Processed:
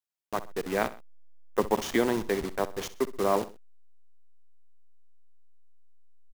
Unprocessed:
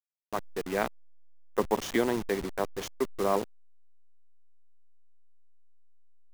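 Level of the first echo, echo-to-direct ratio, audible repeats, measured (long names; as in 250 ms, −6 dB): −16.0 dB, −15.5 dB, 2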